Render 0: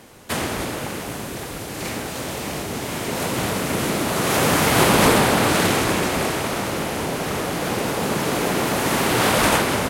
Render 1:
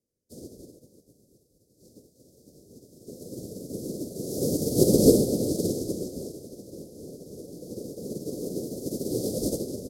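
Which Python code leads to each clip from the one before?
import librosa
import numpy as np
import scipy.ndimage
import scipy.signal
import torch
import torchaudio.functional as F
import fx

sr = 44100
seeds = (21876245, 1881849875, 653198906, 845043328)

y = scipy.signal.sosfilt(scipy.signal.ellip(3, 1.0, 40, [520.0, 4900.0], 'bandstop', fs=sr, output='sos'), x)
y = fx.dynamic_eq(y, sr, hz=330.0, q=0.81, threshold_db=-34.0, ratio=4.0, max_db=6)
y = fx.upward_expand(y, sr, threshold_db=-35.0, expansion=2.5)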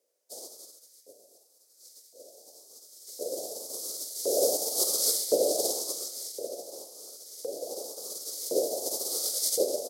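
y = fx.peak_eq(x, sr, hz=180.0, db=-10.5, octaves=2.3)
y = fx.rider(y, sr, range_db=3, speed_s=0.5)
y = fx.filter_lfo_highpass(y, sr, shape='saw_up', hz=0.94, low_hz=500.0, high_hz=2100.0, q=2.7)
y = y * 10.0 ** (7.0 / 20.0)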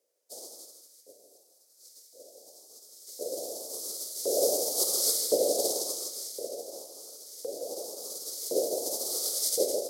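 y = x + 10.0 ** (-7.5 / 20.0) * np.pad(x, (int(161 * sr / 1000.0), 0))[:len(x)]
y = y * 10.0 ** (-1.0 / 20.0)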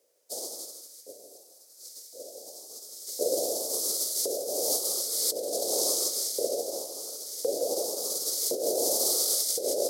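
y = fx.over_compress(x, sr, threshold_db=-33.0, ratio=-1.0)
y = y * 10.0 ** (5.0 / 20.0)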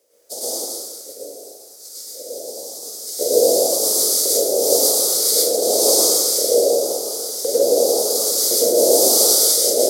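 y = fx.rev_plate(x, sr, seeds[0], rt60_s=0.86, hf_ratio=0.7, predelay_ms=90, drr_db=-7.0)
y = y * 10.0 ** (5.5 / 20.0)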